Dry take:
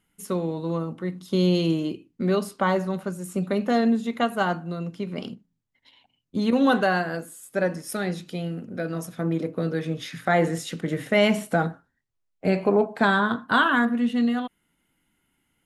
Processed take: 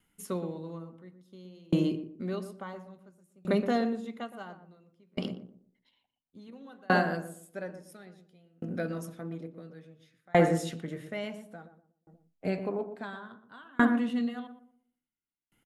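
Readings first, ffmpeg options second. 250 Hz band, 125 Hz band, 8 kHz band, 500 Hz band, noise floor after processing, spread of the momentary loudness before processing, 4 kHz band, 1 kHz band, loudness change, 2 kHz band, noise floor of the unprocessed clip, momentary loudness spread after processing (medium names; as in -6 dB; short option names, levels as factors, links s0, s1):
-8.0 dB, -8.0 dB, -9.5 dB, -8.5 dB, under -85 dBFS, 11 LU, -12.5 dB, -9.5 dB, -7.0 dB, -10.0 dB, -75 dBFS, 22 LU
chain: -filter_complex "[0:a]asplit=2[s0][s1];[s1]adelay=120,lowpass=f=820:p=1,volume=0.501,asplit=2[s2][s3];[s3]adelay=120,lowpass=f=820:p=1,volume=0.42,asplit=2[s4][s5];[s5]adelay=120,lowpass=f=820:p=1,volume=0.42,asplit=2[s6][s7];[s7]adelay=120,lowpass=f=820:p=1,volume=0.42,asplit=2[s8][s9];[s9]adelay=120,lowpass=f=820:p=1,volume=0.42[s10];[s2][s4][s6][s8][s10]amix=inputs=5:normalize=0[s11];[s0][s11]amix=inputs=2:normalize=0,aeval=exprs='val(0)*pow(10,-35*if(lt(mod(0.58*n/s,1),2*abs(0.58)/1000),1-mod(0.58*n/s,1)/(2*abs(0.58)/1000),(mod(0.58*n/s,1)-2*abs(0.58)/1000)/(1-2*abs(0.58)/1000))/20)':c=same"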